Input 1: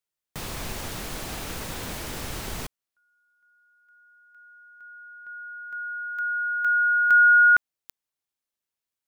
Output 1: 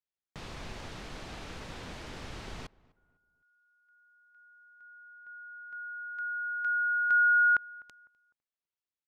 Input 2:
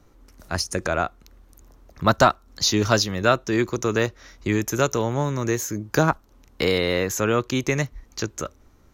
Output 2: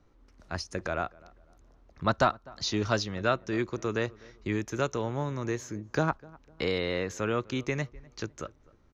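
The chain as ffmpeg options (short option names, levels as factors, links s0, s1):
-filter_complex "[0:a]lowpass=4800,asplit=2[s0][s1];[s1]adelay=252,lowpass=f=1500:p=1,volume=0.075,asplit=2[s2][s3];[s3]adelay=252,lowpass=f=1500:p=1,volume=0.37,asplit=2[s4][s5];[s5]adelay=252,lowpass=f=1500:p=1,volume=0.37[s6];[s0][s2][s4][s6]amix=inputs=4:normalize=0,volume=0.398"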